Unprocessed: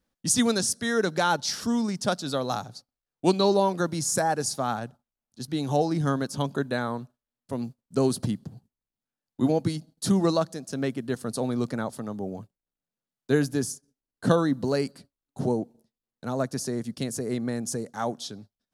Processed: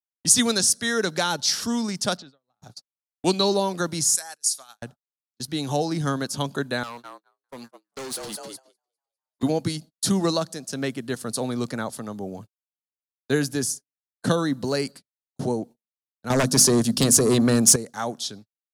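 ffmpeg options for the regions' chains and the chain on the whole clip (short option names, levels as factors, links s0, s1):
-filter_complex "[0:a]asettb=1/sr,asplit=3[s0][s1][s2];[s0]atrim=end=2.174[s3];[s1]atrim=start=2.17:end=2.62,asetpts=PTS-STARTPTS,afade=t=in:d=0.004:c=qsin,afade=t=out:st=0.446:d=0.004:c=qsin,lowpass=2700,acompressor=threshold=0.00794:ratio=16:attack=3.2:release=140:knee=1:detection=peak[s4];[s2]atrim=start=2.616[s5];[s3][s4]acrossfade=d=0.004:c1=hsin:c2=qsin[s6];[s6][s5]acrossfade=d=0.004:c1=qsin:c2=hsin,asettb=1/sr,asplit=3[s7][s8][s9];[s7]atrim=end=4.154[s10];[s8]atrim=start=4.15:end=4.82,asetpts=PTS-STARTPTS,afade=t=in:d=0.004:c=qsin,afade=t=out:st=0.666:d=0.004:c=qsin,lowpass=f=12000:w=0.5412,lowpass=f=12000:w=1.3066,aderivative[s11];[s9]atrim=start=4.816[s12];[s10][s11]acrossfade=d=0.004:c1=hsin:c2=qsin[s13];[s13][s12]acrossfade=d=0.004:c1=qsin:c2=hsin,asettb=1/sr,asplit=3[s14][s15][s16];[s14]atrim=end=6.834[s17];[s15]atrim=start=6.83:end=9.43,asetpts=PTS-STARTPTS,afade=t=in:d=0.004:c=qsin,afade=t=out:st=2.596:d=0.004:c=qsin,highpass=f=760:p=1,asplit=8[s18][s19][s20][s21][s22][s23][s24][s25];[s19]adelay=202,afreqshift=85,volume=0.473[s26];[s20]adelay=404,afreqshift=170,volume=0.254[s27];[s21]adelay=606,afreqshift=255,volume=0.138[s28];[s22]adelay=808,afreqshift=340,volume=0.0741[s29];[s23]adelay=1010,afreqshift=425,volume=0.0403[s30];[s24]adelay=1212,afreqshift=510,volume=0.0216[s31];[s25]adelay=1414,afreqshift=595,volume=0.0117[s32];[s18][s26][s27][s28][s29][s30][s31][s32]amix=inputs=8:normalize=0,atrim=end_sample=114660,volume=47.3,asoftclip=hard,volume=0.0211[s33];[s16]atrim=start=9.426[s34];[s17][s33]acrossfade=d=0.004:c1=hsin:c2=qsin[s35];[s35][s34]acrossfade=d=0.004:c1=qsin:c2=hsin,asettb=1/sr,asplit=3[s36][s37][s38];[s36]atrim=end=16.304[s39];[s37]atrim=start=16.3:end=17.76,asetpts=PTS-STARTPTS,afade=t=in:d=0.004:c=qsin,afade=t=out:st=1.456:d=0.004:c=qsin,equalizer=f=2100:w=4.5:g=-11,bandreject=f=50:t=h:w=6,bandreject=f=100:t=h:w=6,bandreject=f=150:t=h:w=6,bandreject=f=200:t=h:w=6,bandreject=f=250:t=h:w=6,bandreject=f=300:t=h:w=6,aeval=exprs='0.211*sin(PI/2*2.82*val(0)/0.211)':c=same[s40];[s38]atrim=start=17.756[s41];[s39][s40]acrossfade=d=0.004:c1=hsin:c2=qsin[s42];[s42][s41]acrossfade=d=0.004:c1=qsin:c2=hsin,agate=range=0.0112:threshold=0.00891:ratio=16:detection=peak,tiltshelf=f=1400:g=-4,acrossover=split=460|3000[s43][s44][s45];[s44]acompressor=threshold=0.0447:ratio=6[s46];[s43][s46][s45]amix=inputs=3:normalize=0,volume=1.5"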